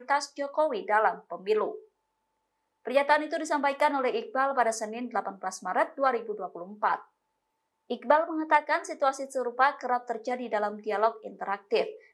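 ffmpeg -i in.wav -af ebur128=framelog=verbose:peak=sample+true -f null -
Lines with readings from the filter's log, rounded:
Integrated loudness:
  I:         -28.3 LUFS
  Threshold: -38.6 LUFS
Loudness range:
  LRA:         2.4 LU
  Threshold: -48.9 LUFS
  LRA low:   -30.2 LUFS
  LRA high:  -27.8 LUFS
Sample peak:
  Peak:       -9.1 dBFS
True peak:
  Peak:       -9.0 dBFS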